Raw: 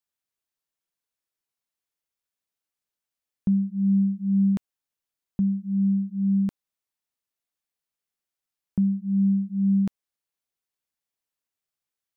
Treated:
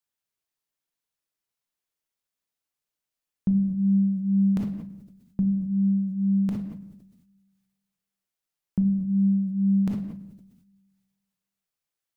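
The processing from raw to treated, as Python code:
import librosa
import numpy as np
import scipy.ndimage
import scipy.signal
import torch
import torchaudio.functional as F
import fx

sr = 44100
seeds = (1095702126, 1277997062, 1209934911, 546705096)

y = fx.room_shoebox(x, sr, seeds[0], volume_m3=360.0, walls='mixed', distance_m=0.47)
y = fx.sustainer(y, sr, db_per_s=50.0)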